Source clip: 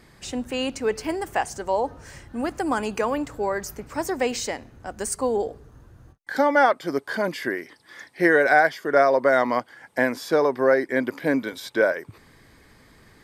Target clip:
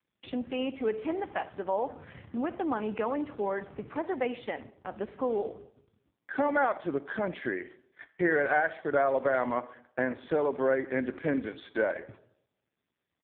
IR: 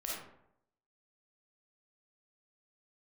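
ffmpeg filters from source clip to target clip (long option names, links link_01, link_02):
-filter_complex "[0:a]acrusher=bits=5:mode=log:mix=0:aa=0.000001,lowshelf=frequency=150:gain=4,aecho=1:1:67|134:0.075|0.0255,agate=range=-43dB:threshold=-41dB:ratio=16:detection=peak,acompressor=threshold=-39dB:ratio=1.5,asplit=2[link_01][link_02];[1:a]atrim=start_sample=2205[link_03];[link_02][link_03]afir=irnorm=-1:irlink=0,volume=-15dB[link_04];[link_01][link_04]amix=inputs=2:normalize=0" -ar 8000 -c:a libopencore_amrnb -b:a 5150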